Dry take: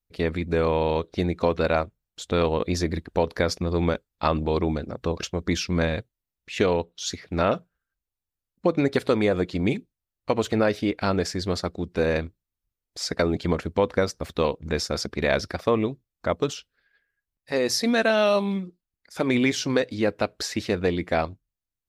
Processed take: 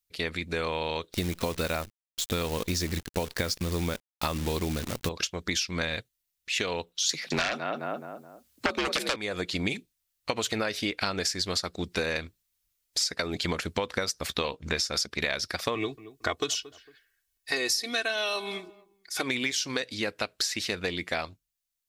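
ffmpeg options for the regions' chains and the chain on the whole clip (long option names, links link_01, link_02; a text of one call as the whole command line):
ffmpeg -i in.wav -filter_complex "[0:a]asettb=1/sr,asplit=3[link_01][link_02][link_03];[link_01]atrim=end=1.134[link_04];[link_02]atrim=start=1.13:end=5.09,asetpts=PTS-STARTPTS,afade=type=in:duration=0.004:curve=qsin,afade=type=out:start_time=3.956:duration=0.004:curve=qsin,acrusher=bits=7:dc=4:mix=0:aa=0.000001,lowshelf=frequency=380:gain=10.5[link_05];[link_03]atrim=start=5.086[link_06];[link_04][link_05]acrossfade=duration=0.004:curve1=hsin:curve2=qsin[link_07];[link_07][link_06]acrossfade=duration=0.004:curve1=qsin:curve2=hsin,asettb=1/sr,asplit=3[link_08][link_09][link_10];[link_08]atrim=end=7.094[link_11];[link_09]atrim=start=7.09:end=9.16,asetpts=PTS-STARTPTS,afade=type=in:duration=0.004:curve=qsin,afade=type=out:start_time=2.066:duration=0.004:curve=qsin,asplit=2[link_12][link_13];[link_13]adelay=212,lowpass=frequency=1300:poles=1,volume=-11dB,asplit=2[link_14][link_15];[link_15]adelay=212,lowpass=frequency=1300:poles=1,volume=0.39,asplit=2[link_16][link_17];[link_17]adelay=212,lowpass=frequency=1300:poles=1,volume=0.39,asplit=2[link_18][link_19];[link_19]adelay=212,lowpass=frequency=1300:poles=1,volume=0.39[link_20];[link_12][link_14][link_16][link_18][link_20]amix=inputs=5:normalize=0,atrim=end_sample=91287,afreqshift=63,aeval=exprs='0.376*sin(PI/2*2.82*val(0)/0.376)':channel_layout=same[link_21];[link_10]atrim=start=9.156[link_22];[link_11][link_21]acrossfade=duration=0.004:curve1=hsin:curve2=qsin[link_23];[link_23][link_22]acrossfade=duration=0.004:curve1=qsin:curve2=hsin,asettb=1/sr,asplit=3[link_24][link_25][link_26];[link_24]atrim=end=14.274[link_27];[link_25]atrim=start=14.27:end=14.94,asetpts=PTS-STARTPTS,afade=type=in:duration=0.004:curve=qsin,afade=type=out:start_time=0.666:duration=0.004:curve=qsin,highshelf=frequency=6600:gain=-6.5,asplit=2[link_28][link_29];[link_29]adelay=15,volume=-12.5dB[link_30];[link_28][link_30]amix=inputs=2:normalize=0,atrim=end_sample=29547[link_31];[link_26]atrim=start=14.936[link_32];[link_27][link_31]acrossfade=duration=0.004:curve1=hsin:curve2=qsin[link_33];[link_33][link_32]acrossfade=duration=0.004:curve1=qsin:curve2=hsin,asettb=1/sr,asplit=3[link_34][link_35][link_36];[link_34]atrim=end=15.754[link_37];[link_35]atrim=start=15.75:end=19.22,asetpts=PTS-STARTPTS,afade=type=in:duration=0.004:curve=qsin,afade=type=out:start_time=3.466:duration=0.004:curve=qsin,aecho=1:1:2.7:0.78,atrim=end_sample=153027,asplit=2[link_38][link_39];[link_39]adelay=226,lowpass=frequency=1200:poles=1,volume=-21.5dB,asplit=2[link_40][link_41];[link_41]adelay=226,lowpass=frequency=1200:poles=1,volume=0.3[link_42];[link_38][link_40][link_42]amix=inputs=3:normalize=0,atrim=end_sample=153027[link_43];[link_36]atrim=start=19.216[link_44];[link_37][link_43]acrossfade=duration=0.004:curve1=hsin:curve2=qsin[link_45];[link_45][link_44]acrossfade=duration=0.004:curve1=qsin:curve2=hsin,dynaudnorm=framelen=320:gausssize=31:maxgain=11.5dB,tiltshelf=frequency=1400:gain=-9,acompressor=threshold=-25dB:ratio=12" out.wav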